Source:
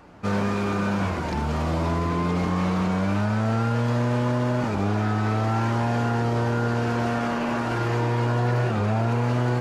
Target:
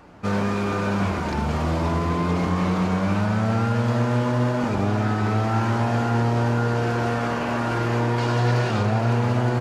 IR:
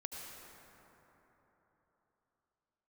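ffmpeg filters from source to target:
-filter_complex "[0:a]asettb=1/sr,asplit=3[link_01][link_02][link_03];[link_01]atrim=end=8.184[link_04];[link_02]atrim=start=8.18:end=8.83,asetpts=PTS-STARTPTS,afade=type=in:duration=0.004:curve=qsin,afade=type=out:start_time=0.646:duration=0.004:curve=qsin,equalizer=frequency=4700:width=0.7:gain=7.5[link_05];[link_03]atrim=start=8.826[link_06];[link_04][link_05]acrossfade=duration=0.004:curve1=hsin:curve2=qsin[link_07];[link_07][link_06]acrossfade=duration=0.004:curve1=qsin:curve2=hsin,aecho=1:1:469:0.376,volume=1dB"

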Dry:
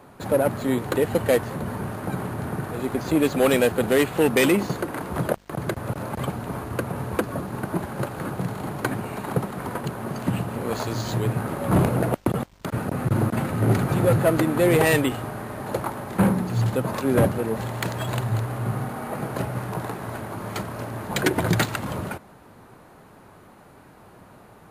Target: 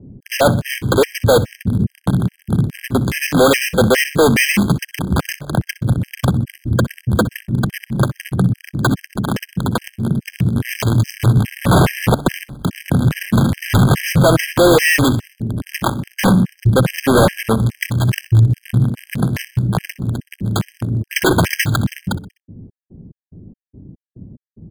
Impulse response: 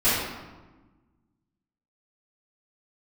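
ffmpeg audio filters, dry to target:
-filter_complex "[0:a]highshelf=frequency=3400:gain=-3,bandreject=frequency=143.7:width_type=h:width=4,bandreject=frequency=287.4:width_type=h:width=4,bandreject=frequency=431.1:width_type=h:width=4,bandreject=frequency=574.8:width_type=h:width=4,bandreject=frequency=718.5:width_type=h:width=4,acrossover=split=290[link_01][link_02];[link_02]acrusher=bits=3:mix=0:aa=0.5[link_03];[link_01][link_03]amix=inputs=2:normalize=0,apsyclip=23dB,asplit=2[link_04][link_05];[link_05]aecho=0:1:63|126|189|252:0.126|0.0629|0.0315|0.0157[link_06];[link_04][link_06]amix=inputs=2:normalize=0,afftfilt=real='re*gt(sin(2*PI*2.4*pts/sr)*(1-2*mod(floor(b*sr/1024/1600),2)),0)':imag='im*gt(sin(2*PI*2.4*pts/sr)*(1-2*mod(floor(b*sr/1024/1600),2)),0)':win_size=1024:overlap=0.75,volume=-6dB"

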